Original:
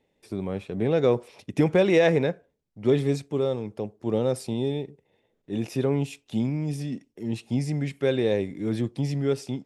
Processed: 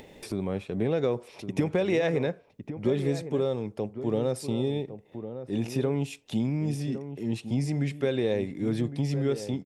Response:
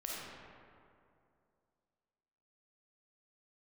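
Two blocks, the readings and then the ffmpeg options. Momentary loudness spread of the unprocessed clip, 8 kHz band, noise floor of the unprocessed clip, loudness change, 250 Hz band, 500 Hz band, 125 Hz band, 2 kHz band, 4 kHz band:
12 LU, -1.0 dB, -74 dBFS, -3.0 dB, -2.0 dB, -4.0 dB, -1.5 dB, -4.5 dB, -3.0 dB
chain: -filter_complex "[0:a]acompressor=threshold=0.0794:ratio=6,asplit=2[s0][s1];[s1]adelay=1108,volume=0.282,highshelf=f=4000:g=-24.9[s2];[s0][s2]amix=inputs=2:normalize=0,acompressor=mode=upward:threshold=0.0251:ratio=2.5"

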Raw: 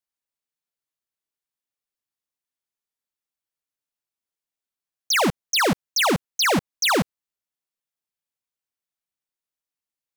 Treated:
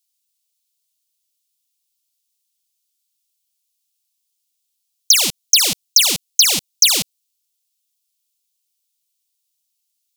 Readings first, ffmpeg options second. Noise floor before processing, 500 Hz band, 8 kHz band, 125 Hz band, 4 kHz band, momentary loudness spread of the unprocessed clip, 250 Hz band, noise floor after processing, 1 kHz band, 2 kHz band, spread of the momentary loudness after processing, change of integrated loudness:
under -85 dBFS, -10.5 dB, +14.5 dB, -9.0 dB, +9.5 dB, 2 LU, -9.5 dB, -74 dBFS, -11.5 dB, -2.0 dB, 2 LU, +8.0 dB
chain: -af "aexciter=amount=14.7:drive=5.1:freq=2500,acompressor=threshold=1:ratio=6,volume=0.376"

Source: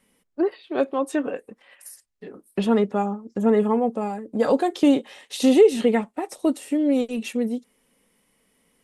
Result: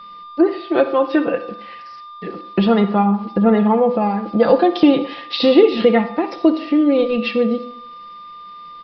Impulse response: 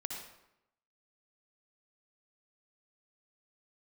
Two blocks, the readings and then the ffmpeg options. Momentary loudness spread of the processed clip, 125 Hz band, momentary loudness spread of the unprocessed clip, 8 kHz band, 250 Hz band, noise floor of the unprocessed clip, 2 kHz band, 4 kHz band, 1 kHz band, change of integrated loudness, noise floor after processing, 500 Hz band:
22 LU, no reading, 12 LU, under -15 dB, +6.0 dB, -69 dBFS, +8.0 dB, +9.0 dB, +8.0 dB, +6.0 dB, -37 dBFS, +5.5 dB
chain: -filter_complex "[0:a]aecho=1:1:5.9:0.61,asplit=2[s0][s1];[s1]acompressor=threshold=0.0562:ratio=6,volume=1.26[s2];[s0][s2]amix=inputs=2:normalize=0,aeval=exprs='val(0)+0.0141*sin(2*PI*1200*n/s)':c=same,aeval=exprs='val(0)*gte(abs(val(0)),0.0075)':c=same,asplit=2[s3][s4];[1:a]atrim=start_sample=2205,asetrate=57330,aresample=44100[s5];[s4][s5]afir=irnorm=-1:irlink=0,volume=0.794[s6];[s3][s6]amix=inputs=2:normalize=0,aresample=11025,aresample=44100,volume=0.891"

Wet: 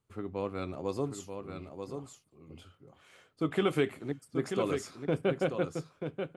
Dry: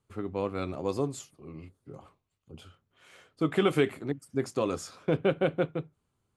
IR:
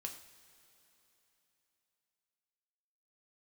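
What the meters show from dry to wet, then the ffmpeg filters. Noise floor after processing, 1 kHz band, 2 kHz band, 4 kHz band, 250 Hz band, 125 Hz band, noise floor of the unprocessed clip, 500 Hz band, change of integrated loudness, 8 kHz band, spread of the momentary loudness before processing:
-71 dBFS, -3.0 dB, -3.0 dB, -3.0 dB, -2.5 dB, -3.0 dB, -80 dBFS, -2.5 dB, -4.0 dB, -2.5 dB, 20 LU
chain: -af "aecho=1:1:936:0.447,volume=0.668"

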